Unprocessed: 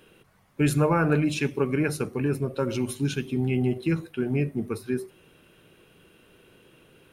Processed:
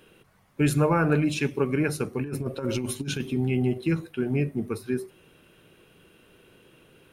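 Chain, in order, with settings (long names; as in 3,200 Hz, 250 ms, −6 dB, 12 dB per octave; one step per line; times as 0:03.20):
0:02.23–0:03.33: compressor whose output falls as the input rises −28 dBFS, ratio −0.5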